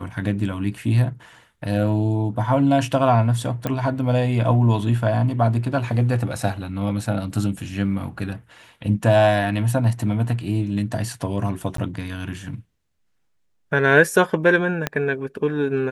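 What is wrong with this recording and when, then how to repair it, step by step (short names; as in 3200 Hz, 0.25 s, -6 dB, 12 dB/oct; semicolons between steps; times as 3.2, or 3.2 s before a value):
3.67 pop -11 dBFS
11.77–11.78 gap 13 ms
14.87 pop -7 dBFS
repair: de-click; interpolate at 11.77, 13 ms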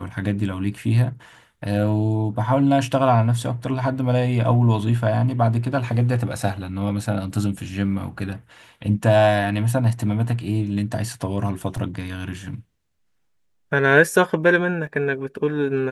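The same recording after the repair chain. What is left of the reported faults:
14.87 pop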